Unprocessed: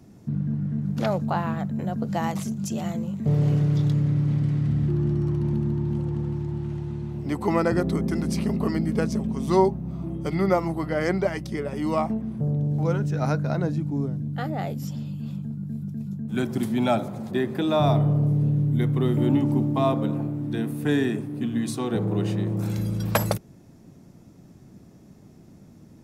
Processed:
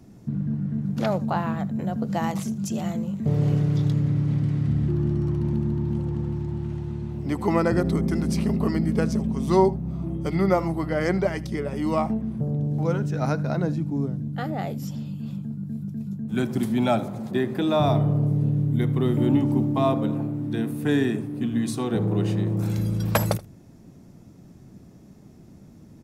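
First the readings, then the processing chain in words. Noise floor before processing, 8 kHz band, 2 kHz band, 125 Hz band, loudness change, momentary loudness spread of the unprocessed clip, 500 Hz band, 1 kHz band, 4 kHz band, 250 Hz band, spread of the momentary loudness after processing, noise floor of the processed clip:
-50 dBFS, 0.0 dB, 0.0 dB, 0.0 dB, +0.5 dB, 9 LU, +0.5 dB, 0.0 dB, 0.0 dB, +1.0 dB, 8 LU, -48 dBFS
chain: low shelf 140 Hz +4.5 dB; notches 50/100/150 Hz; echo 79 ms -21 dB

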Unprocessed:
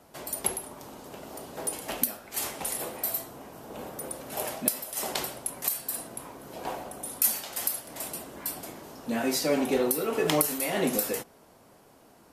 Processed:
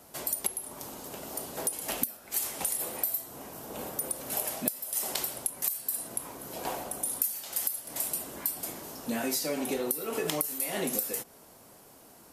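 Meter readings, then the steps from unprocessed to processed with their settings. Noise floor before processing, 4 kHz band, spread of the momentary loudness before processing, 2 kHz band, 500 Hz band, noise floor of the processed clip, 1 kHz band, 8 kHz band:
-57 dBFS, -3.0 dB, 16 LU, -4.0 dB, -5.5 dB, -55 dBFS, -4.0 dB, 0.0 dB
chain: high shelf 5600 Hz +11.5 dB; compressor 6:1, threshold -28 dBFS, peak gain reduction 18 dB

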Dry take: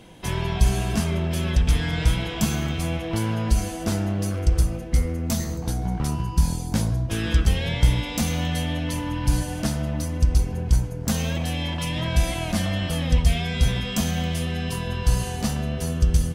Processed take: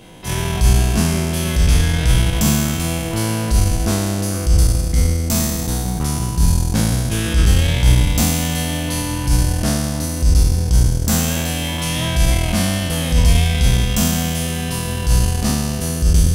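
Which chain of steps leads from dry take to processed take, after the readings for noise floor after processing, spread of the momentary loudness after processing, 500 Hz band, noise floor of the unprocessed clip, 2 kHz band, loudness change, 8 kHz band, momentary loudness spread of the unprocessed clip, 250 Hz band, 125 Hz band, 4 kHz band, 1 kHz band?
-23 dBFS, 6 LU, +5.5 dB, -31 dBFS, +6.0 dB, +7.0 dB, +11.0 dB, 5 LU, +6.0 dB, +6.5 dB, +7.0 dB, +5.5 dB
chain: spectral trails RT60 2.06 s; high shelf 8400 Hz +5 dB; transient shaper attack -6 dB, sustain -10 dB; gain +4 dB

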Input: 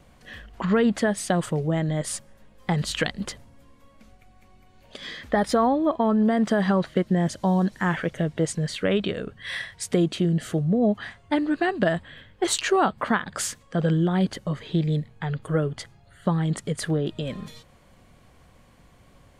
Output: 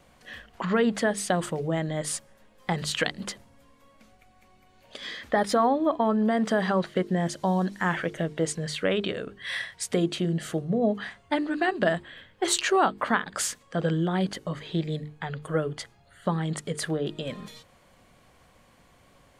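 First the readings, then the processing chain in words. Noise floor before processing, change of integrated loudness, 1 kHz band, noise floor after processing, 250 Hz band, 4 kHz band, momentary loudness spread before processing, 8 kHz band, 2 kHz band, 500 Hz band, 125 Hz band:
-55 dBFS, -2.5 dB, -0.5 dB, -59 dBFS, -4.5 dB, 0.0 dB, 12 LU, 0.0 dB, 0.0 dB, -1.5 dB, -5.5 dB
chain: low shelf 210 Hz -7.5 dB; notches 50/100/150/200/250/300/350/400/450 Hz

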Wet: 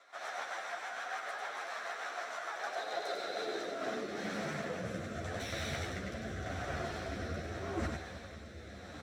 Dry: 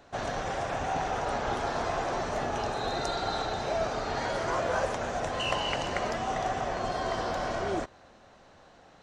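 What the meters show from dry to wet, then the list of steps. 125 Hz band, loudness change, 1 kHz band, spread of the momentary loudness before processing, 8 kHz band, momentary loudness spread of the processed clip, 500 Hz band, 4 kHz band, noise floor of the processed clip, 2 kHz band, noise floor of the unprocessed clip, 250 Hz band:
-4.0 dB, -8.5 dB, -11.0 dB, 3 LU, -6.5 dB, 4 LU, -9.5 dB, -8.5 dB, -49 dBFS, -4.5 dB, -56 dBFS, -5.0 dB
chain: minimum comb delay 0.53 ms; bell 700 Hz +6 dB 0.26 oct; reverse; compressor 16:1, threshold -45 dBFS, peak gain reduction 21 dB; reverse; high-pass sweep 910 Hz -> 72 Hz, 2.49–5.54; rotary speaker horn 6.7 Hz, later 0.85 Hz, at 3.26; on a send: echo 98 ms -4 dB; on the sum: ensemble effect; gain +12.5 dB

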